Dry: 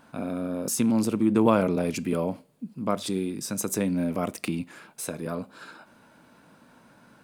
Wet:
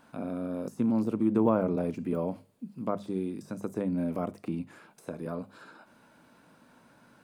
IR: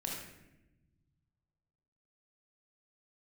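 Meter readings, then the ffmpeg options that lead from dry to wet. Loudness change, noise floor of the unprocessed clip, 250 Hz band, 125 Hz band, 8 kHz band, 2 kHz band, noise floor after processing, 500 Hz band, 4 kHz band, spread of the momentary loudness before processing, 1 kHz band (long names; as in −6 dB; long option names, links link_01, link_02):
−4.0 dB, −57 dBFS, −4.0 dB, −4.0 dB, below −20 dB, −10.5 dB, −61 dBFS, −4.0 dB, below −15 dB, 16 LU, −5.5 dB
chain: -filter_complex "[0:a]deesser=0.85,bandreject=frequency=50:width_type=h:width=6,bandreject=frequency=100:width_type=h:width=6,bandreject=frequency=150:width_type=h:width=6,bandreject=frequency=200:width_type=h:width=6,acrossover=split=1400[link_01][link_02];[link_02]acompressor=threshold=-53dB:ratio=6[link_03];[link_01][link_03]amix=inputs=2:normalize=0,volume=-3.5dB"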